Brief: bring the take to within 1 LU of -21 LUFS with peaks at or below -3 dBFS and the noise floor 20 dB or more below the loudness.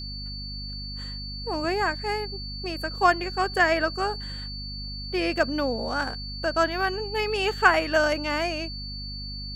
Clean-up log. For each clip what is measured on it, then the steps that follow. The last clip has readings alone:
hum 50 Hz; harmonics up to 250 Hz; hum level -35 dBFS; steady tone 4500 Hz; tone level -36 dBFS; loudness -26.5 LUFS; peak -4.0 dBFS; loudness target -21.0 LUFS
-> de-hum 50 Hz, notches 5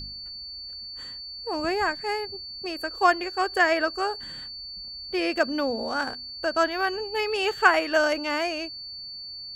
hum none; steady tone 4500 Hz; tone level -36 dBFS
-> notch 4500 Hz, Q 30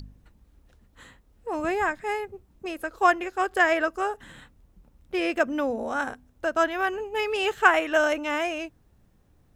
steady tone none; loudness -25.5 LUFS; peak -4.5 dBFS; loudness target -21.0 LUFS
-> gain +4.5 dB; limiter -3 dBFS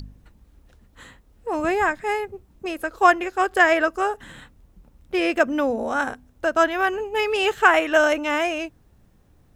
loudness -21.5 LUFS; peak -3.0 dBFS; noise floor -57 dBFS

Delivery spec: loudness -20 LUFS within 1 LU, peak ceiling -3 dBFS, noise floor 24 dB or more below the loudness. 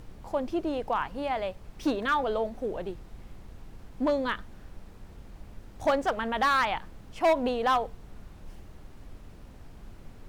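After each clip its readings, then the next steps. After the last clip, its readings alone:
clipped 0.6%; flat tops at -18.5 dBFS; noise floor -49 dBFS; noise floor target -53 dBFS; loudness -29.0 LUFS; peak -18.5 dBFS; loudness target -20.0 LUFS
-> clip repair -18.5 dBFS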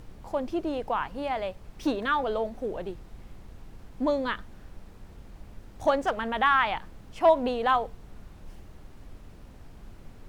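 clipped 0.0%; noise floor -49 dBFS; noise floor target -52 dBFS
-> noise print and reduce 6 dB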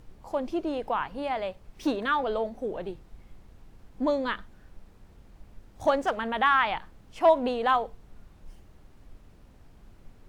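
noise floor -55 dBFS; loudness -28.0 LUFS; peak -10.0 dBFS; loudness target -20.0 LUFS
-> gain +8 dB; limiter -3 dBFS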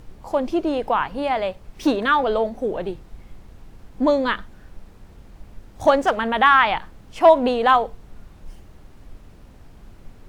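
loudness -20.0 LUFS; peak -3.0 dBFS; noise floor -47 dBFS

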